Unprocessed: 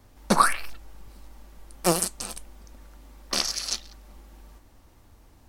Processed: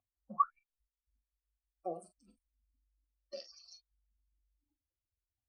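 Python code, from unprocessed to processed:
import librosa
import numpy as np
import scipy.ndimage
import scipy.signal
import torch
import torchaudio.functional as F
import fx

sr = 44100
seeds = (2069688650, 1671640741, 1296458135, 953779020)

y = fx.spec_expand(x, sr, power=3.5)
y = fx.room_early_taps(y, sr, ms=(24, 42), db=(-12.0, -11.0))
y = fx.vowel_held(y, sr, hz=2.3)
y = y * 10.0 ** (-2.5 / 20.0)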